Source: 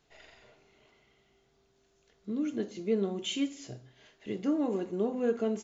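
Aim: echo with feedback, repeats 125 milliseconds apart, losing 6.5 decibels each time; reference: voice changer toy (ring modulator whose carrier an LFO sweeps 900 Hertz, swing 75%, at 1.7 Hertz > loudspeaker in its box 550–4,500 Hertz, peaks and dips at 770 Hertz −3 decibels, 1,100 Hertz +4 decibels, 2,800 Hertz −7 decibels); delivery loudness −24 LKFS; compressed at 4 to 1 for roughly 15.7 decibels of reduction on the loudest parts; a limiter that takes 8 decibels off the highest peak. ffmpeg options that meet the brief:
ffmpeg -i in.wav -af "acompressor=threshold=-44dB:ratio=4,alimiter=level_in=17dB:limit=-24dB:level=0:latency=1,volume=-17dB,aecho=1:1:125|250|375|500|625|750:0.473|0.222|0.105|0.0491|0.0231|0.0109,aeval=exprs='val(0)*sin(2*PI*900*n/s+900*0.75/1.7*sin(2*PI*1.7*n/s))':channel_layout=same,highpass=550,equalizer=frequency=770:width_type=q:width=4:gain=-3,equalizer=frequency=1100:width_type=q:width=4:gain=4,equalizer=frequency=2800:width_type=q:width=4:gain=-7,lowpass=frequency=4500:width=0.5412,lowpass=frequency=4500:width=1.3066,volume=28dB" out.wav

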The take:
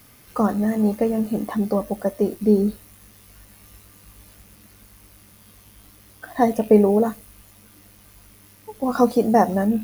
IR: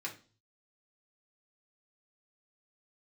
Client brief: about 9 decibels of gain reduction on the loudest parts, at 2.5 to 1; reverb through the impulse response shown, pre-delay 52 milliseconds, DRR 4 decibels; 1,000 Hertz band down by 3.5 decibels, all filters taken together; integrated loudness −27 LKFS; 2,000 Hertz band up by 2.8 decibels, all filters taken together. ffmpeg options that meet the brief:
-filter_complex "[0:a]equalizer=frequency=1000:width_type=o:gain=-6.5,equalizer=frequency=2000:width_type=o:gain=5.5,acompressor=threshold=-23dB:ratio=2.5,asplit=2[link_01][link_02];[1:a]atrim=start_sample=2205,adelay=52[link_03];[link_02][link_03]afir=irnorm=-1:irlink=0,volume=-5dB[link_04];[link_01][link_04]amix=inputs=2:normalize=0,volume=-1dB"

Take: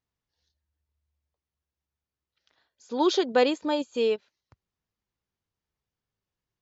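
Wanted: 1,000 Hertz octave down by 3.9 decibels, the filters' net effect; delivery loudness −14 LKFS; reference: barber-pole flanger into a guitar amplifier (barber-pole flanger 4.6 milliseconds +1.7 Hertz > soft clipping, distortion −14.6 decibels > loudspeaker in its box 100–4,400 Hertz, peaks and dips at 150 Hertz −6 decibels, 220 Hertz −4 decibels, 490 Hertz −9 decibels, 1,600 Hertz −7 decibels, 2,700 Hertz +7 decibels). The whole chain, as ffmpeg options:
ffmpeg -i in.wav -filter_complex "[0:a]equalizer=frequency=1000:width_type=o:gain=-4,asplit=2[link_01][link_02];[link_02]adelay=4.6,afreqshift=1.7[link_03];[link_01][link_03]amix=inputs=2:normalize=1,asoftclip=threshold=-24dB,highpass=100,equalizer=frequency=150:width_type=q:width=4:gain=-6,equalizer=frequency=220:width_type=q:width=4:gain=-4,equalizer=frequency=490:width_type=q:width=4:gain=-9,equalizer=frequency=1600:width_type=q:width=4:gain=-7,equalizer=frequency=2700:width_type=q:width=4:gain=7,lowpass=frequency=4400:width=0.5412,lowpass=frequency=4400:width=1.3066,volume=20.5dB" out.wav

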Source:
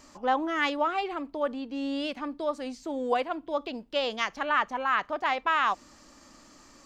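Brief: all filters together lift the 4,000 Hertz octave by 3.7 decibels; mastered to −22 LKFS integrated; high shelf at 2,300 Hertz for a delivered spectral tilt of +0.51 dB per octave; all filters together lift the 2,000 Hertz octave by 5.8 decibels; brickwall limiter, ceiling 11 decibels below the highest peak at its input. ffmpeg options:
ffmpeg -i in.wav -af "equalizer=frequency=2000:width_type=o:gain=8,highshelf=frequency=2300:gain=-3.5,equalizer=frequency=4000:width_type=o:gain=4.5,volume=9dB,alimiter=limit=-10.5dB:level=0:latency=1" out.wav

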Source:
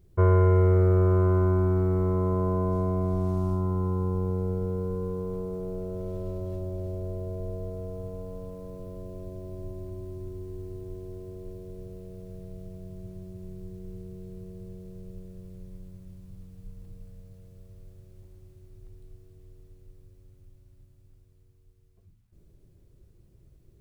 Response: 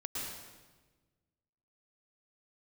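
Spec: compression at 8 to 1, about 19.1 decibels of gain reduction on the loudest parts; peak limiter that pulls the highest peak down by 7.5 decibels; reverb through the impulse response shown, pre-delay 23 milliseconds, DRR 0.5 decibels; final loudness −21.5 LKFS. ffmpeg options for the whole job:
-filter_complex "[0:a]acompressor=threshold=-37dB:ratio=8,alimiter=level_in=9.5dB:limit=-24dB:level=0:latency=1,volume=-9.5dB,asplit=2[link_01][link_02];[1:a]atrim=start_sample=2205,adelay=23[link_03];[link_02][link_03]afir=irnorm=-1:irlink=0,volume=-2.5dB[link_04];[link_01][link_04]amix=inputs=2:normalize=0,volume=20dB"

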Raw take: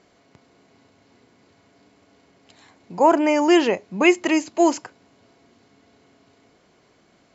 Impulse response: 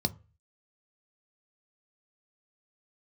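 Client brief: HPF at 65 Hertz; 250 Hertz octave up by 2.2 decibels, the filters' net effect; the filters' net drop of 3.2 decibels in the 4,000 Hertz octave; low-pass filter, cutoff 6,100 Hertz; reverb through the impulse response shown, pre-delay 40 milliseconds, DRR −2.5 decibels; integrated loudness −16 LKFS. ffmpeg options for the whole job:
-filter_complex "[0:a]highpass=65,lowpass=6100,equalizer=frequency=250:width_type=o:gain=3.5,equalizer=frequency=4000:width_type=o:gain=-5,asplit=2[link_01][link_02];[1:a]atrim=start_sample=2205,adelay=40[link_03];[link_02][link_03]afir=irnorm=-1:irlink=0,volume=-3dB[link_04];[link_01][link_04]amix=inputs=2:normalize=0,volume=-6dB"

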